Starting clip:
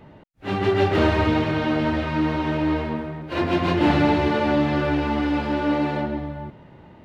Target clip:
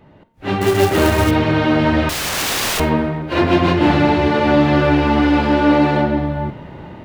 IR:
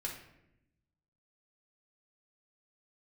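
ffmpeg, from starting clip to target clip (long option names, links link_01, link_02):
-filter_complex "[0:a]bandreject=frequency=227.7:width_type=h:width=4,bandreject=frequency=455.4:width_type=h:width=4,bandreject=frequency=683.1:width_type=h:width=4,bandreject=frequency=910.8:width_type=h:width=4,bandreject=frequency=1138.5:width_type=h:width=4,bandreject=frequency=1366.2:width_type=h:width=4,bandreject=frequency=1593.9:width_type=h:width=4,bandreject=frequency=1821.6:width_type=h:width=4,bandreject=frequency=2049.3:width_type=h:width=4,bandreject=frequency=2277:width_type=h:width=4,bandreject=frequency=2504.7:width_type=h:width=4,bandreject=frequency=2732.4:width_type=h:width=4,bandreject=frequency=2960.1:width_type=h:width=4,bandreject=frequency=3187.8:width_type=h:width=4,bandreject=frequency=3415.5:width_type=h:width=4,bandreject=frequency=3643.2:width_type=h:width=4,bandreject=frequency=3870.9:width_type=h:width=4,bandreject=frequency=4098.6:width_type=h:width=4,bandreject=frequency=4326.3:width_type=h:width=4,bandreject=frequency=4554:width_type=h:width=4,bandreject=frequency=4781.7:width_type=h:width=4,bandreject=frequency=5009.4:width_type=h:width=4,bandreject=frequency=5237.1:width_type=h:width=4,bandreject=frequency=5464.8:width_type=h:width=4,bandreject=frequency=5692.5:width_type=h:width=4,bandreject=frequency=5920.2:width_type=h:width=4,bandreject=frequency=6147.9:width_type=h:width=4,asettb=1/sr,asplit=3[link_01][link_02][link_03];[link_01]atrim=end=0.614[link_04];[link_02]atrim=start=0.61:end=1.31,asetpts=PTS-STARTPTS,afade=type=in:duration=0.004:curve=qsin,afade=type=out:start_time=0.696:duration=0.004:curve=qsin,acrusher=bits=3:mode=log:mix=0:aa=0.000001[link_05];[link_03]atrim=start=1.306[link_06];[link_04][link_05]acrossfade=duration=0.004:curve1=hsin:curve2=qsin[link_07];[link_07][link_06]acrossfade=duration=0.004:curve1=qsin:curve2=hsin,asettb=1/sr,asplit=3[link_08][link_09][link_10];[link_08]atrim=end=2.094[link_11];[link_09]atrim=start=2.09:end=2.8,asetpts=PTS-STARTPTS,afade=type=in:duration=0.004:curve=qsin,afade=type=out:start_time=0.706:duration=0.004:curve=qsin,aeval=exprs='(mod(22.4*val(0)+1,2)-1)/22.4':channel_layout=same[link_12];[link_10]atrim=start=2.796[link_13];[link_11][link_12]acrossfade=duration=0.004:curve1=hsin:curve2=qsin[link_14];[link_14][link_13]acrossfade=duration=0.004:curve1=qsin:curve2=hsin,dynaudnorm=framelen=190:gausssize=3:maxgain=14dB,asplit=2[link_15][link_16];[1:a]atrim=start_sample=2205,adelay=46[link_17];[link_16][link_17]afir=irnorm=-1:irlink=0,volume=-15.5dB[link_18];[link_15][link_18]amix=inputs=2:normalize=0,volume=-1.5dB"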